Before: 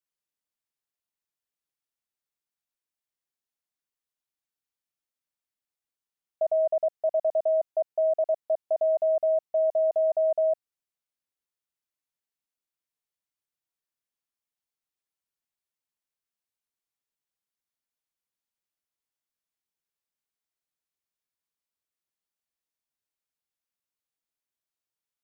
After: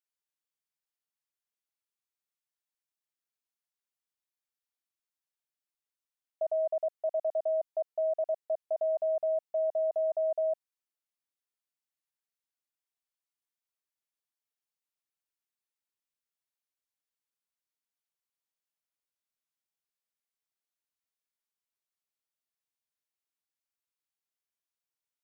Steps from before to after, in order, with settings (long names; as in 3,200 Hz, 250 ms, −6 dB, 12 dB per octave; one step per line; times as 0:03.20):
low-shelf EQ 380 Hz −8 dB
level −3.5 dB